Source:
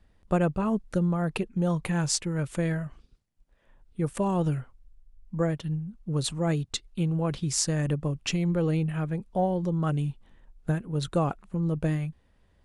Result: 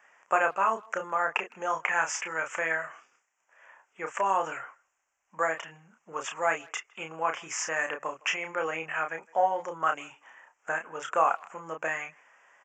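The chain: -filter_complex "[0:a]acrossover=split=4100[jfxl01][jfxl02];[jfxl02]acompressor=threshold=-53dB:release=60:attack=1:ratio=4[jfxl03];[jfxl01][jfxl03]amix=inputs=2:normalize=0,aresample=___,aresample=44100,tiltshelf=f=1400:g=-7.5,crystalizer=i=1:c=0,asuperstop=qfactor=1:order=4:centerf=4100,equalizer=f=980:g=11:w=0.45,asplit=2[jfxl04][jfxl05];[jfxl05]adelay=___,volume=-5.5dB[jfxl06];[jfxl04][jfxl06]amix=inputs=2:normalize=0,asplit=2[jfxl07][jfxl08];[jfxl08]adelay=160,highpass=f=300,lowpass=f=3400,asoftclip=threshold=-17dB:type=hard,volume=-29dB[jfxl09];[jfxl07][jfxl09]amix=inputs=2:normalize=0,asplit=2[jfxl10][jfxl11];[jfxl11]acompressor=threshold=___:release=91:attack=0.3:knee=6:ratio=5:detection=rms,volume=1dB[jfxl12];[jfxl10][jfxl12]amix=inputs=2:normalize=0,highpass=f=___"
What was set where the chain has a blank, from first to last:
16000, 31, -41dB, 690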